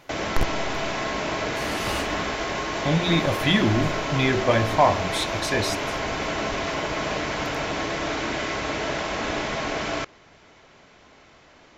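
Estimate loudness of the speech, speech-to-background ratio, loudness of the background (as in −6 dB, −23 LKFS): −24.5 LKFS, 2.5 dB, −27.0 LKFS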